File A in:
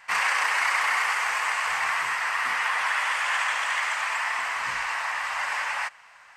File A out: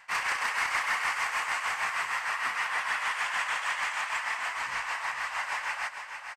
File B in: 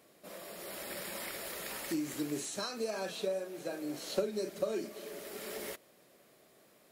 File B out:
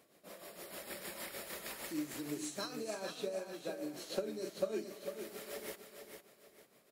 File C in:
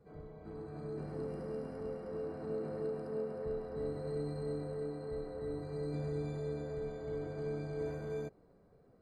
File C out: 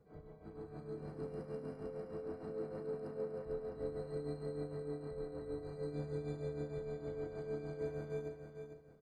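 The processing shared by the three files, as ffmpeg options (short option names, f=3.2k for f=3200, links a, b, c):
-filter_complex "[0:a]aeval=exprs='0.168*(abs(mod(val(0)/0.168+3,4)-2)-1)':c=same,tremolo=f=6.5:d=0.58,asoftclip=type=tanh:threshold=-19dB,asplit=2[a][b];[b]aecho=0:1:451|902|1353|1804:0.422|0.127|0.038|0.0114[c];[a][c]amix=inputs=2:normalize=0,volume=-2dB"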